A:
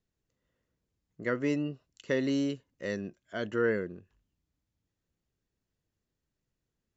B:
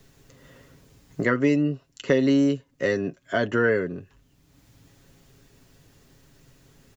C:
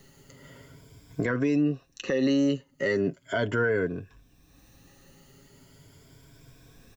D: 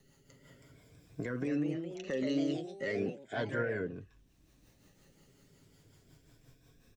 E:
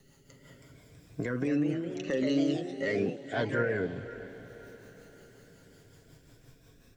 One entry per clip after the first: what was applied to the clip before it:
comb 7.3 ms, depth 49%; three-band squash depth 70%; gain +7.5 dB
moving spectral ripple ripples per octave 1.7, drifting +0.38 Hz, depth 11 dB; limiter -16.5 dBFS, peak gain reduction 10.5 dB
rotary speaker horn 5.5 Hz; echoes that change speed 0.355 s, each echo +2 st, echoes 3, each echo -6 dB; gain -8 dB
diffused feedback echo 0.498 s, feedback 50%, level -14.5 dB; gain +4.5 dB

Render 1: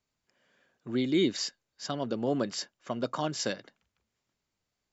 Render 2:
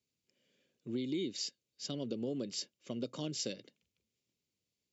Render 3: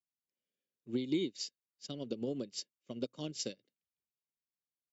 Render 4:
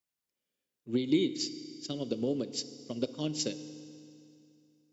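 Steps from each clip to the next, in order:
HPF 92 Hz; band shelf 1100 Hz -15.5 dB; compressor 6:1, threshold -31 dBFS, peak gain reduction 9.5 dB; gain -2.5 dB
upward expander 2.5:1, over -50 dBFS; gain +5.5 dB
FDN reverb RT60 2.5 s, low-frequency decay 1.2×, high-frequency decay 0.95×, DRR 12 dB; gain +5.5 dB

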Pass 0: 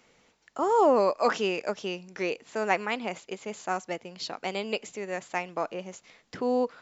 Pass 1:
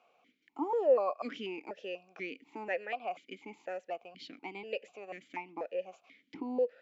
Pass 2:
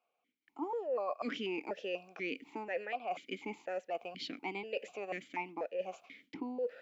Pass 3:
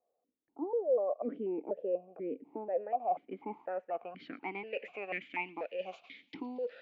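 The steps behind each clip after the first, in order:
in parallel at 0 dB: compressor, threshold -35 dBFS, peak gain reduction 17 dB; on the sum: vowel sequencer 4.1 Hz
gate with hold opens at -53 dBFS; reverse; compressor 6:1, threshold -41 dBFS, peak gain reduction 19 dB; reverse; gain +6.5 dB
low-pass sweep 550 Hz -> 3800 Hz, 2.44–5.91; thin delay 0.115 s, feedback 78%, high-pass 3500 Hz, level -20.5 dB; gain -1 dB

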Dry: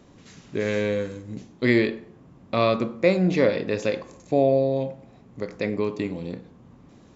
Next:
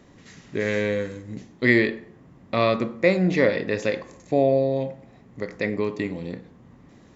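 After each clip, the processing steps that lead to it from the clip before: bell 1900 Hz +8 dB 0.27 oct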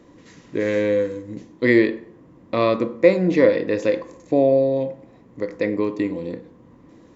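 small resonant body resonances 320/490/990 Hz, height 11 dB, ringing for 45 ms; gain -2 dB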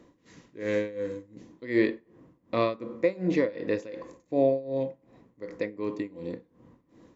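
tremolo 2.7 Hz, depth 88%; gain -5 dB

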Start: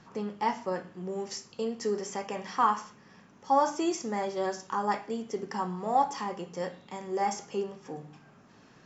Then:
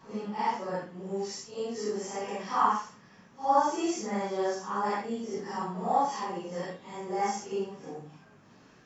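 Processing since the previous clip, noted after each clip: phase scrambler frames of 0.2 s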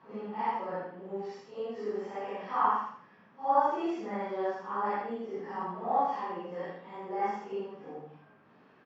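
HPF 340 Hz 6 dB/oct; air absorption 390 m; feedback echo 80 ms, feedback 31%, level -6.5 dB

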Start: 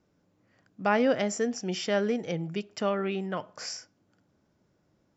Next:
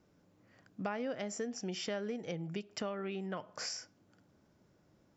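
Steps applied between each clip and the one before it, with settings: compressor 4:1, threshold -39 dBFS, peak gain reduction 17 dB; gain +1.5 dB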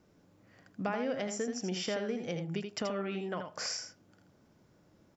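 echo 81 ms -6.5 dB; gain +3 dB

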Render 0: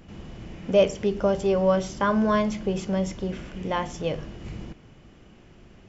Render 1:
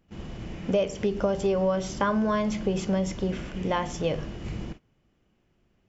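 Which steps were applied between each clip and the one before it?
gate -41 dBFS, range -20 dB; compressor 5:1, threshold -24 dBFS, peak gain reduction 10.5 dB; gain +2.5 dB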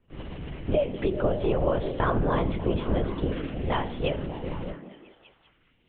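LPC vocoder at 8 kHz whisper; on a send: delay with a stepping band-pass 0.198 s, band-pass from 240 Hz, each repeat 0.7 oct, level -5 dB

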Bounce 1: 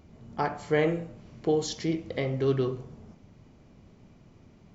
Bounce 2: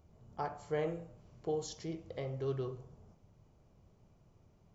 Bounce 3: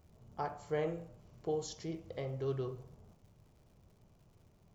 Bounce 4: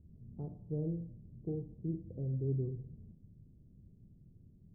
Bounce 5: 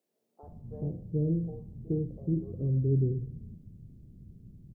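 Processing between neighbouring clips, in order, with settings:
graphic EQ 250/2000/4000 Hz -10/-8/-5 dB; gain -7 dB
crackle 220/s -61 dBFS
ladder low-pass 320 Hz, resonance 25%; gain +11 dB
bands offset in time highs, lows 0.43 s, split 600 Hz; gain +8.5 dB

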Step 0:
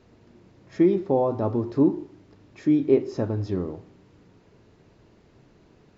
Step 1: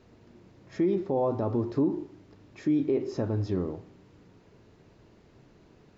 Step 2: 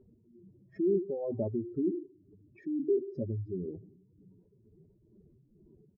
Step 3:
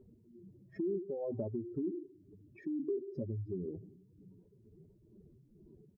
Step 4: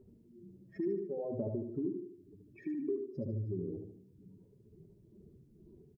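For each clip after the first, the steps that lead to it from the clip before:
limiter -17 dBFS, peak gain reduction 9.5 dB; gain -1 dB
spectral contrast raised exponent 2.9; tremolo 2.1 Hz, depth 55%; comb 5.2 ms, depth 37%; gain -2 dB
compressor 2.5:1, threshold -38 dBFS, peak gain reduction 9.5 dB; gain +1 dB
feedback echo 74 ms, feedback 43%, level -5 dB

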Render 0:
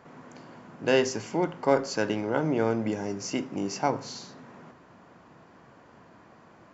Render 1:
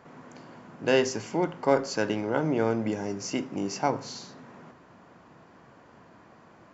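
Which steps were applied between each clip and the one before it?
nothing audible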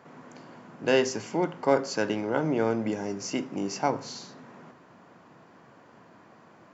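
HPF 110 Hz

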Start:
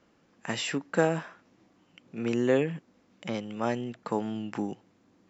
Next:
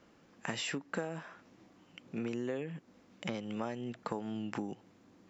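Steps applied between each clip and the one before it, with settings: compressor 8:1, threshold -36 dBFS, peak gain reduction 18 dB; gain +2 dB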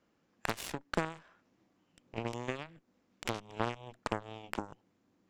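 added harmonics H 5 -39 dB, 6 -16 dB, 7 -15 dB, 8 -26 dB, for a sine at -19.5 dBFS; gain +3.5 dB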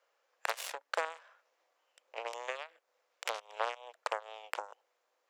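elliptic high-pass 510 Hz, stop band 80 dB; gain +2 dB

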